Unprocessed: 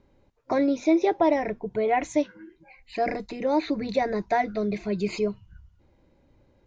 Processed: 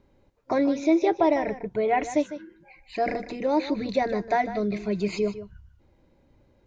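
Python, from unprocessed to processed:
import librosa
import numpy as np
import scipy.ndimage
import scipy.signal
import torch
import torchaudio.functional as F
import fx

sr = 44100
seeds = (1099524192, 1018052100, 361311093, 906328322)

y = x + 10.0 ** (-13.0 / 20.0) * np.pad(x, (int(152 * sr / 1000.0), 0))[:len(x)]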